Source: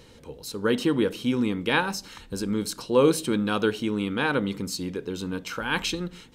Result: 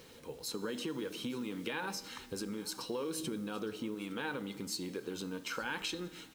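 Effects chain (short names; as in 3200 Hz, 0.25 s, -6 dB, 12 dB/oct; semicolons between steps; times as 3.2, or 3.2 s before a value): bin magnitudes rounded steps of 15 dB; limiter -17.5 dBFS, peak gain reduction 8.5 dB; 3.19–3.95 low shelf 460 Hz +7.5 dB; Schroeder reverb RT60 0.4 s, combs from 25 ms, DRR 19.5 dB; compressor 6:1, threshold -32 dBFS, peak gain reduction 14 dB; resonator 160 Hz, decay 1.8 s, mix 60%; bit-crush 11-bit; low shelf 150 Hz -11.5 dB; on a send: echo 0.863 s -20.5 dB; 0.48–2.04 on the sum: three-band squash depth 40%; gain +5.5 dB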